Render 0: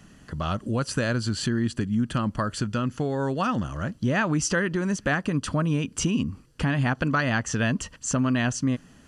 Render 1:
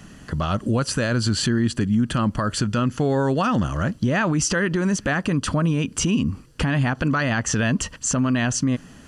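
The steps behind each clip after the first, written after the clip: peak limiter -20.5 dBFS, peak gain reduction 8 dB; trim +7.5 dB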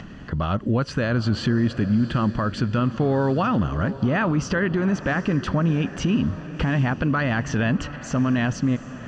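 upward compressor, threshold -32 dBFS; distance through air 210 m; echo that smears into a reverb 756 ms, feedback 49%, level -14 dB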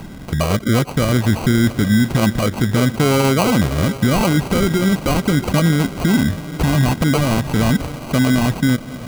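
sample-and-hold 25×; trim +6 dB

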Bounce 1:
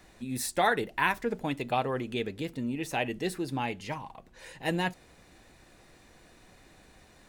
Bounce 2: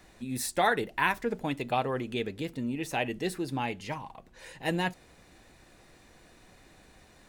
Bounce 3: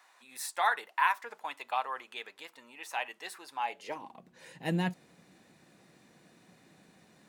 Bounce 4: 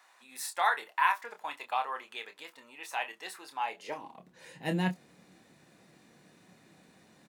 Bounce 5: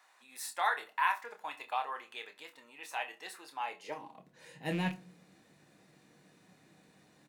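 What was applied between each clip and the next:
no audible change
high-pass sweep 1 kHz -> 170 Hz, 3.59–4.24 s; trim -5 dB
doubling 27 ms -8 dB
rattle on loud lows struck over -32 dBFS, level -30 dBFS; reverberation RT60 0.40 s, pre-delay 6 ms, DRR 11.5 dB; trim -3.5 dB

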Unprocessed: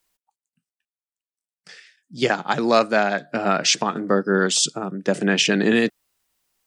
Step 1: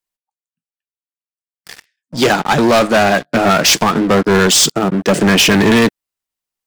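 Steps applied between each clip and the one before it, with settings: waveshaping leveller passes 5; trim -3.5 dB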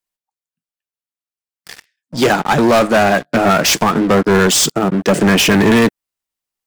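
dynamic bell 4.2 kHz, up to -4 dB, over -26 dBFS, Q 0.85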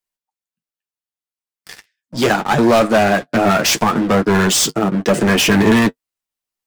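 flange 0.76 Hz, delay 8.2 ms, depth 1.8 ms, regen -35%; trim +2 dB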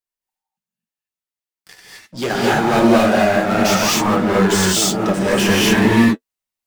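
gated-style reverb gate 280 ms rising, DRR -6 dB; trim -7.5 dB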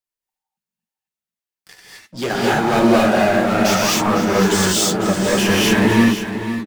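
delay 502 ms -10 dB; trim -1 dB

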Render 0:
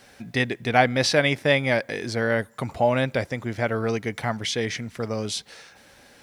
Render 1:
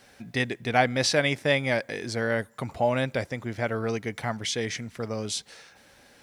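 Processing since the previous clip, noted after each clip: dynamic bell 7.6 kHz, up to +5 dB, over -45 dBFS, Q 1.3; trim -3.5 dB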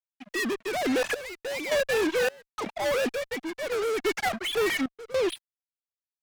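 formants replaced by sine waves; fuzz box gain 41 dB, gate -43 dBFS; random-step tremolo, depth 95%; trim -8.5 dB

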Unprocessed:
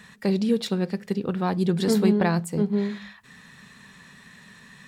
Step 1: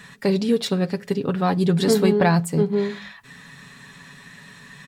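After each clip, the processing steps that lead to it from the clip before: comb 7.1 ms, depth 50%; trim +4 dB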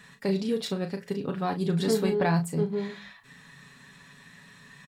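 doubling 36 ms -8 dB; trim -8 dB

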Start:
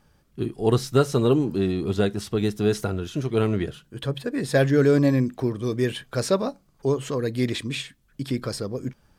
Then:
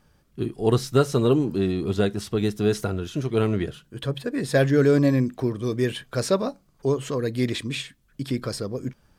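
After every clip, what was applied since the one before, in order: band-stop 830 Hz, Q 26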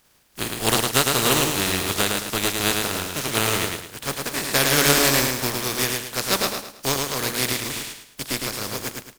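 spectral contrast reduction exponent 0.29; on a send: feedback delay 108 ms, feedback 35%, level -3.5 dB; on the sum: trim -1 dB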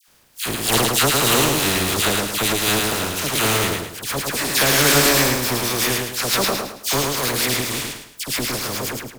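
in parallel at -4.5 dB: overload inside the chain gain 19 dB; on the sum: phase dispersion lows, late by 83 ms, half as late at 1.4 kHz

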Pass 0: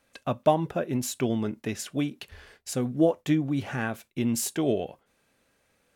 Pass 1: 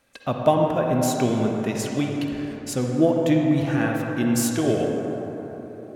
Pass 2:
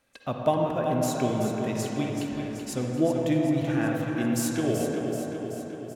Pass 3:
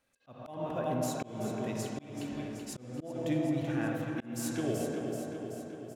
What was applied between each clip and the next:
reverberation RT60 4.1 s, pre-delay 42 ms, DRR 0.5 dB; trim +3 dB
feedback delay 381 ms, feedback 59%, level -8 dB; trim -5.5 dB
slow attack 273 ms; trim -6.5 dB

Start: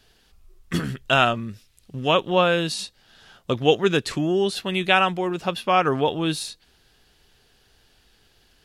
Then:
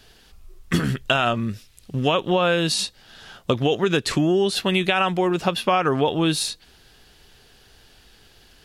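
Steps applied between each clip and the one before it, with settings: peak limiter -10.5 dBFS, peak gain reduction 7.5 dB; compression 6:1, threshold -23 dBFS, peak gain reduction 7.5 dB; trim +7 dB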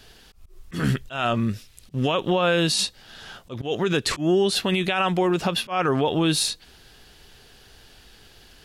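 peak limiter -14.5 dBFS, peak gain reduction 8 dB; slow attack 130 ms; trim +2 dB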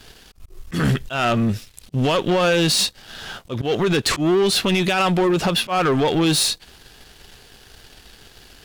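waveshaping leveller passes 2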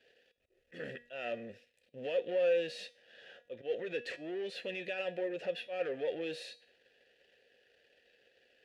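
vowel filter e; feedback comb 240 Hz, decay 0.45 s, harmonics all, mix 60%

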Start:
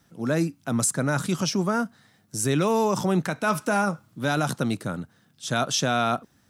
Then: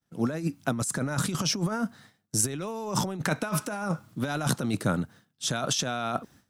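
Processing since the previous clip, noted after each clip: expander -49 dBFS; compressor with a negative ratio -27 dBFS, ratio -0.5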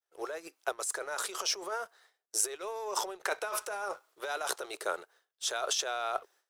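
elliptic high-pass 390 Hz, stop band 40 dB; waveshaping leveller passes 1; trim -6 dB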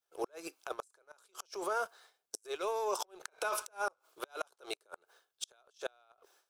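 band-stop 1.9 kHz, Q 5.3; compressor with a negative ratio -35 dBFS, ratio -0.5; inverted gate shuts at -25 dBFS, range -34 dB; trim +2 dB

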